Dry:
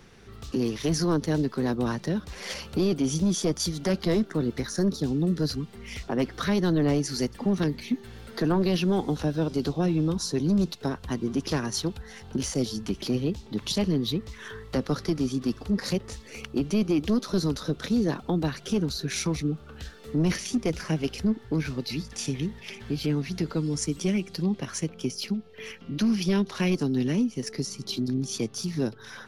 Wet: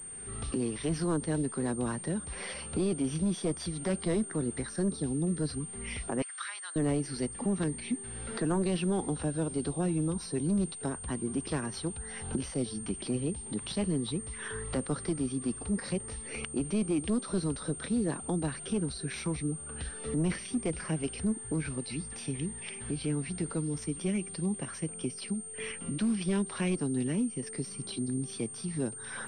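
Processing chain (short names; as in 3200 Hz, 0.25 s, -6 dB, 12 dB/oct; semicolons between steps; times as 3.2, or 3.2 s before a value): recorder AGC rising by 26 dB/s; 6.22–6.76 HPF 1200 Hz 24 dB/oct; pulse-width modulation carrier 8700 Hz; gain -5.5 dB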